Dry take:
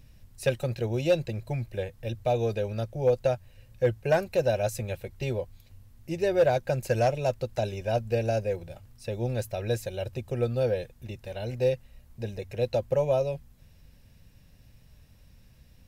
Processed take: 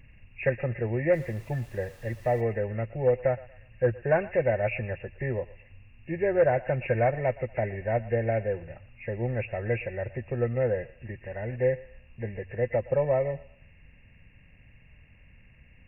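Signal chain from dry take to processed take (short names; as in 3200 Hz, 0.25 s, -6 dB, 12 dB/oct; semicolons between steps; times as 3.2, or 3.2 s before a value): nonlinear frequency compression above 1600 Hz 4:1; 1.12–2.4 added noise pink -56 dBFS; thinning echo 0.118 s, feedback 42%, high-pass 660 Hz, level -17 dB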